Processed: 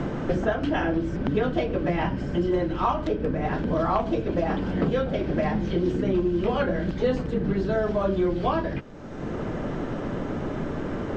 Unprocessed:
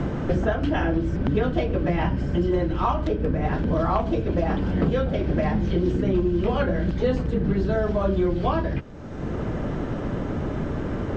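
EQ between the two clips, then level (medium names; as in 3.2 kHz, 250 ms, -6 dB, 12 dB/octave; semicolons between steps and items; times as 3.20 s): peaking EQ 65 Hz -9 dB 1.9 oct; 0.0 dB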